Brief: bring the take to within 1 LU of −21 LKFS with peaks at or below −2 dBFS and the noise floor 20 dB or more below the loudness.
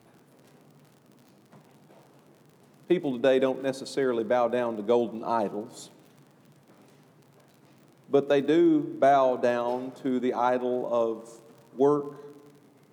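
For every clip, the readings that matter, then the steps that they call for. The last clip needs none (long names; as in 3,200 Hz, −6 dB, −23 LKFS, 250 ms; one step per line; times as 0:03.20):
crackle rate 55 per second; integrated loudness −26.0 LKFS; sample peak −10.5 dBFS; target loudness −21.0 LKFS
→ click removal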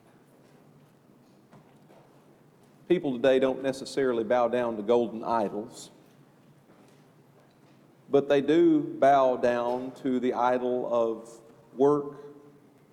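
crackle rate 0.54 per second; integrated loudness −26.0 LKFS; sample peak −10.5 dBFS; target loudness −21.0 LKFS
→ level +5 dB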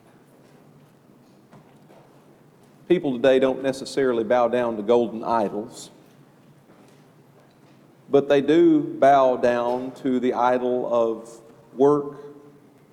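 integrated loudness −21.0 LKFS; sample peak −5.5 dBFS; background noise floor −55 dBFS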